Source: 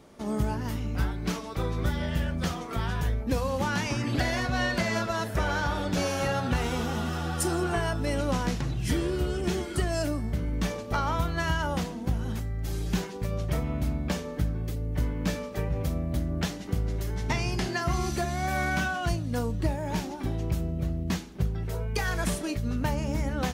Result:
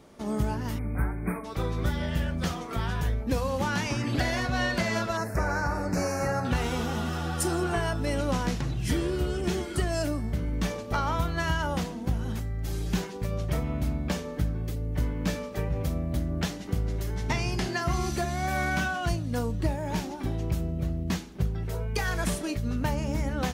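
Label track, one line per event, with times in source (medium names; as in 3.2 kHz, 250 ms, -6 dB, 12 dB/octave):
0.780000	1.450000	spectral selection erased 2.5–8.4 kHz
5.170000	6.450000	Butterworth band-stop 3.3 kHz, Q 1.3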